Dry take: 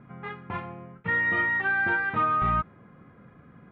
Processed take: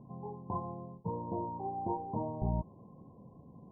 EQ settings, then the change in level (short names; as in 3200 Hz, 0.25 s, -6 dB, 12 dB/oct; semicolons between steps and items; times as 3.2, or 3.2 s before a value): brick-wall FIR low-pass 1100 Hz; -2.0 dB